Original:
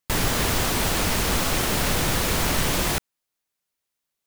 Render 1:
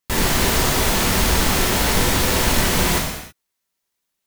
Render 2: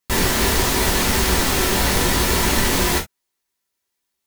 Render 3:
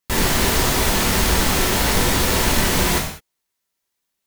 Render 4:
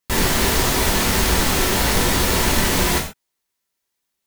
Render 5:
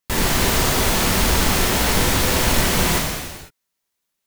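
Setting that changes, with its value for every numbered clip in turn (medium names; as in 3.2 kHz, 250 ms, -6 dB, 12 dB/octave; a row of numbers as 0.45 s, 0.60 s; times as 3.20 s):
gated-style reverb, gate: 350 ms, 90 ms, 230 ms, 160 ms, 530 ms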